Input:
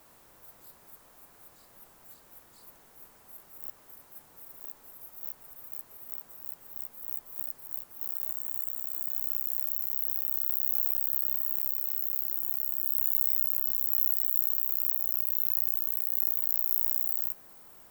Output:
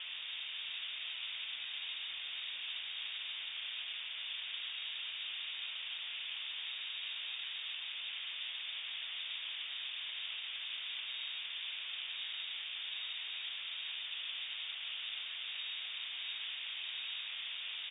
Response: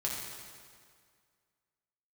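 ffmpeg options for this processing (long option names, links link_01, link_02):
-filter_complex "[0:a]lowpass=frequency=3100:width_type=q:width=0.5098,lowpass=frequency=3100:width_type=q:width=0.6013,lowpass=frequency=3100:width_type=q:width=0.9,lowpass=frequency=3100:width_type=q:width=2.563,afreqshift=-3700,equalizer=frequency=82:width=0.95:gain=14,crystalizer=i=8.5:c=0,lowshelf=frequency=200:gain=-10.5,asplit=2[link_01][link_02];[link_02]aecho=0:1:665:0.447[link_03];[link_01][link_03]amix=inputs=2:normalize=0,volume=6.5dB"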